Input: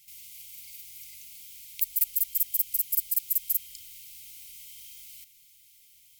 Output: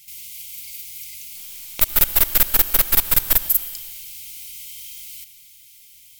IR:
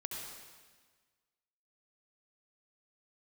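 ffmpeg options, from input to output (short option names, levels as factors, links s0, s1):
-filter_complex "[0:a]asoftclip=type=tanh:threshold=0.211,asettb=1/sr,asplit=3[s0][s1][s2];[s0]atrim=end=1.364[s3];[s1]atrim=start=1.36:end=3.37,asetpts=PTS-STARTPTS,afade=t=in:d=0.004:c=qsin,afade=t=out:st=2.006:d=0.004:c=qsin,aeval=exprs='0.2*(cos(1*acos(clip(val(0)/0.2,-1,1)))-cos(1*PI/2))+0.0447*(cos(6*acos(clip(val(0)/0.2,-1,1)))-cos(6*PI/2))':c=same[s4];[s2]atrim=start=3.366[s5];[s3][s4]acrossfade=d=0.004:c1=hsin:c2=qsin[s6];[s6][s5]acrossfade=d=0.004:c1=qsin:c2=hsin,asplit=2[s7][s8];[1:a]atrim=start_sample=2205,asetrate=41895,aresample=44100[s9];[s8][s9]afir=irnorm=-1:irlink=0,volume=0.335[s10];[s7][s10]amix=inputs=2:normalize=0,volume=2.51"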